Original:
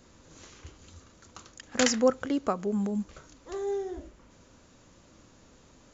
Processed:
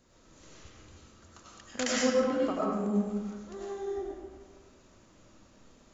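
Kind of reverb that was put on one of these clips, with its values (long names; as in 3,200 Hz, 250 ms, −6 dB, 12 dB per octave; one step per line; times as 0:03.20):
comb and all-pass reverb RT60 1.4 s, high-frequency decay 0.65×, pre-delay 60 ms, DRR −6 dB
level −8.5 dB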